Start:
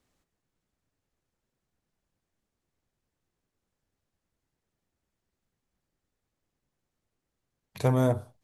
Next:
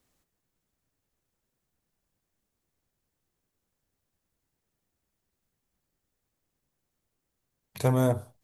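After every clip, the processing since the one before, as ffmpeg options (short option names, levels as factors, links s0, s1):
-af "highshelf=f=9300:g=10.5"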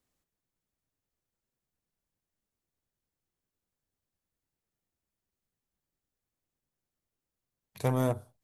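-af "aeval=exprs='0.299*(cos(1*acos(clip(val(0)/0.299,-1,1)))-cos(1*PI/2))+0.0168*(cos(7*acos(clip(val(0)/0.299,-1,1)))-cos(7*PI/2))':c=same,volume=0.668"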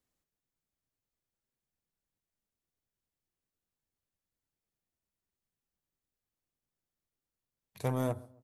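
-filter_complex "[0:a]asplit=2[s0][s1];[s1]adelay=136,lowpass=f=1100:p=1,volume=0.0891,asplit=2[s2][s3];[s3]adelay=136,lowpass=f=1100:p=1,volume=0.38,asplit=2[s4][s5];[s5]adelay=136,lowpass=f=1100:p=1,volume=0.38[s6];[s0][s2][s4][s6]amix=inputs=4:normalize=0,volume=0.631"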